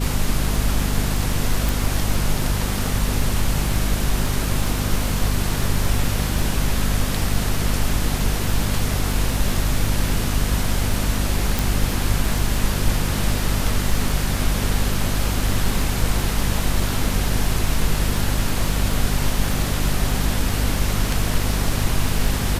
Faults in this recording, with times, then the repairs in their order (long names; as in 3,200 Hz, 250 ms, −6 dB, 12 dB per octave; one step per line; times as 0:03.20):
surface crackle 32 per second −26 dBFS
mains hum 50 Hz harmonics 5 −24 dBFS
0:01.69: click
0:11.59: click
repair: click removal
hum removal 50 Hz, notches 5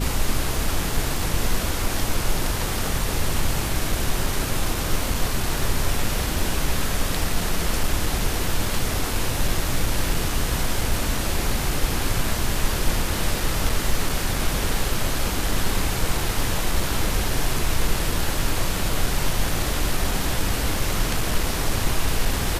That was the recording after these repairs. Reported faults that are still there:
0:11.59: click